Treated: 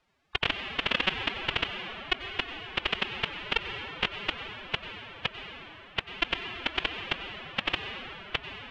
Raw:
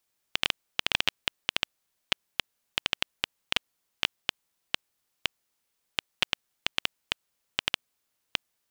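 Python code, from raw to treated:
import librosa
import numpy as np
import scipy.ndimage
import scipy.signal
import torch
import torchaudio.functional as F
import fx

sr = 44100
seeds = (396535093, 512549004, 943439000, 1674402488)

p1 = fx.low_shelf(x, sr, hz=70.0, db=-4.0)
p2 = fx.rev_plate(p1, sr, seeds[0], rt60_s=4.1, hf_ratio=0.55, predelay_ms=80, drr_db=16.0)
p3 = fx.pitch_keep_formants(p2, sr, semitones=11.0)
p4 = scipy.signal.sosfilt(scipy.signal.butter(2, 2500.0, 'lowpass', fs=sr, output='sos'), p3)
p5 = fx.over_compress(p4, sr, threshold_db=-41.0, ratio=-0.5)
p6 = p4 + (p5 * librosa.db_to_amplitude(2.0))
p7 = fx.low_shelf(p6, sr, hz=210.0, db=6.5)
y = p7 * librosa.db_to_amplitude(4.5)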